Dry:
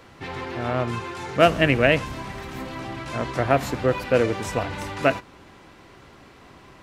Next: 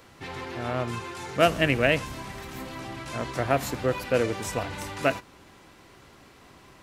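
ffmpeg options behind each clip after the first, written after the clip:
-af "highshelf=f=5.9k:g=10,volume=-4.5dB"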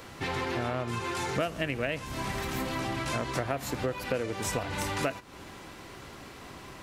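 -af "acompressor=threshold=-34dB:ratio=10,volume=6.5dB"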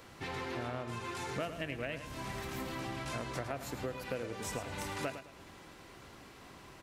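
-af "aecho=1:1:107|214|321|428:0.299|0.0985|0.0325|0.0107,volume=-8dB"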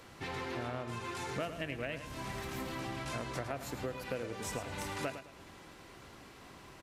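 -af "aresample=32000,aresample=44100"

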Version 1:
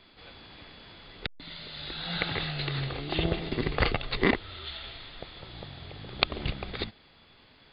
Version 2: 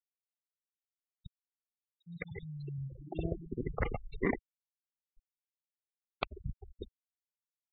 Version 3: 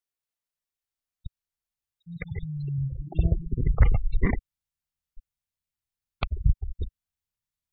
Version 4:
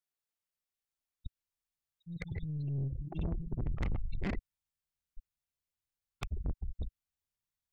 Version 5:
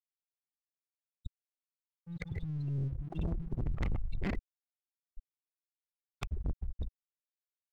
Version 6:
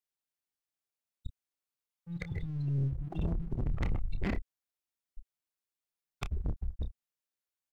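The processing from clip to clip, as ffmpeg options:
-af "afftfilt=real='re*gte(hypot(re,im),0.1)':imag='im*gte(hypot(re,im),0.1)':win_size=1024:overlap=0.75,lowpass=2k,volume=-6.5dB"
-af "asubboost=boost=9:cutoff=120,volume=3.5dB"
-af "aeval=exprs='(tanh(25.1*val(0)+0.3)-tanh(0.3))/25.1':c=same,volume=-2.5dB"
-af "aeval=exprs='sgn(val(0))*max(abs(val(0))-0.00106,0)':c=same,volume=1dB"
-filter_complex "[0:a]asplit=2[a][b];[b]adelay=29,volume=-10.5dB[c];[a][c]amix=inputs=2:normalize=0,volume=1.5dB"

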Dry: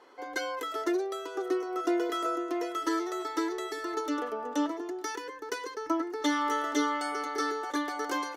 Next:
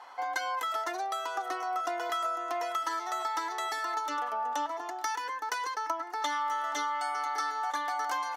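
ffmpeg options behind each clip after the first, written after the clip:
-af "lowshelf=f=560:t=q:w=3:g=-11.5,acompressor=threshold=-35dB:ratio=6,volume=5.5dB"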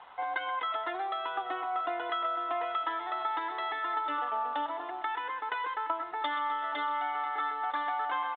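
-af "aresample=8000,aeval=exprs='sgn(val(0))*max(abs(val(0))-0.001,0)':c=same,aresample=44100,aecho=1:1:127|254|381|508|635:0.237|0.126|0.0666|0.0353|0.0187"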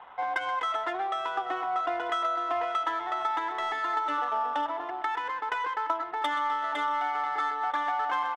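-af "adynamicsmooth=sensitivity=7.5:basefreq=3.2k,volume=3.5dB"

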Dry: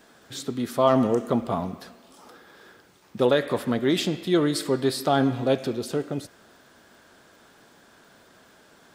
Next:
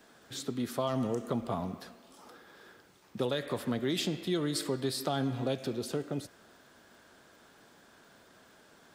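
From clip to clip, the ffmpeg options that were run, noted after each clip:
-filter_complex "[0:a]acrossover=split=150|3000[a][b][c];[b]acompressor=threshold=-25dB:ratio=6[d];[a][d][c]amix=inputs=3:normalize=0,volume=-4.5dB"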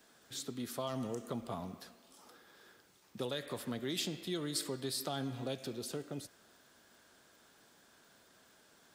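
-af "highshelf=f=3.3k:g=8,volume=-7.5dB"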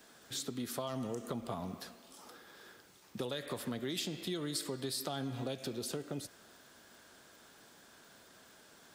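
-af "acompressor=threshold=-41dB:ratio=3,volume=5dB"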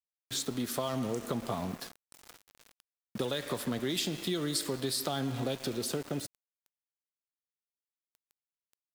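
-af "aeval=exprs='val(0)*gte(abs(val(0)),0.00422)':c=same,volume=5.5dB"

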